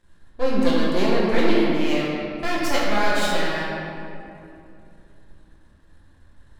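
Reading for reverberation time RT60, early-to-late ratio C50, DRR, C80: 2.7 s, −2.5 dB, −7.0 dB, −1.0 dB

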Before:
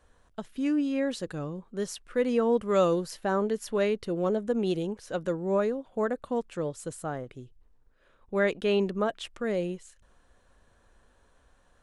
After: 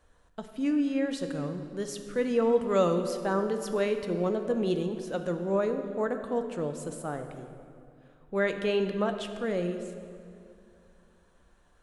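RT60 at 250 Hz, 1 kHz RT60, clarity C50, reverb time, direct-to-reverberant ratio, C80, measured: 3.0 s, 2.4 s, 8.0 dB, 2.5 s, 6.5 dB, 9.0 dB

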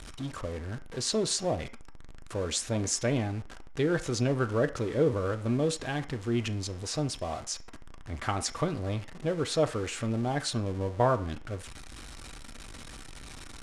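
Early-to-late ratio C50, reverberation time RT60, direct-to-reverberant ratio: 15.5 dB, non-exponential decay, 7.5 dB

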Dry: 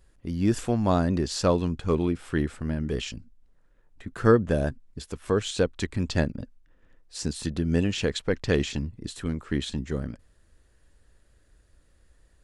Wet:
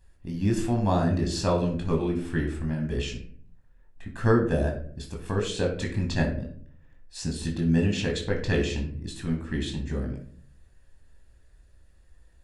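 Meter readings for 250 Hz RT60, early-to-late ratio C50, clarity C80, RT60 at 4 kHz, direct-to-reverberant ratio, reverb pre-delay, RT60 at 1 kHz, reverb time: 0.75 s, 7.5 dB, 12.0 dB, 0.30 s, 0.5 dB, 18 ms, 0.45 s, 0.55 s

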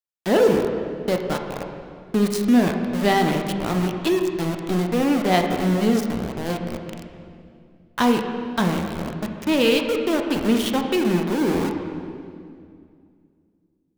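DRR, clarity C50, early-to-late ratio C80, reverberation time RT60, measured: 3.5 dB, 5.0 dB, 6.0 dB, 2.3 s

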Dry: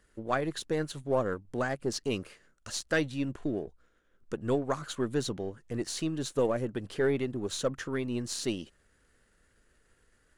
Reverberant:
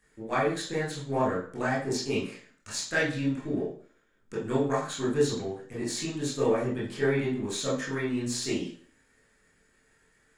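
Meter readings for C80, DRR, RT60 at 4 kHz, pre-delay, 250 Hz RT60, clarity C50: 10.0 dB, −8.0 dB, 0.40 s, 17 ms, 0.45 s, 5.5 dB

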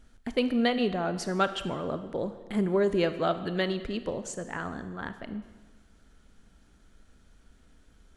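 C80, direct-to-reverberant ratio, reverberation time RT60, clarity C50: 13.0 dB, 10.5 dB, 1.4 s, 11.5 dB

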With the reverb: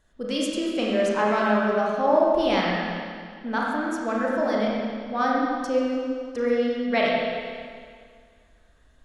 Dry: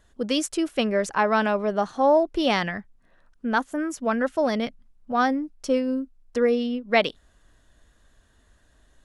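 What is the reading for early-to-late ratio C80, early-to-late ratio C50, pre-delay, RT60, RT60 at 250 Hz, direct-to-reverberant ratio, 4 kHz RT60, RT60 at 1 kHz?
0.0 dB, −2.0 dB, 28 ms, 2.0 s, 2.0 s, −4.5 dB, 1.9 s, 2.0 s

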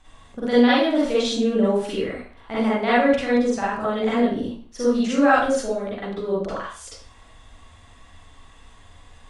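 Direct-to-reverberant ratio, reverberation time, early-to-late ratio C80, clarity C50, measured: −9.0 dB, 0.45 s, 5.0 dB, −2.5 dB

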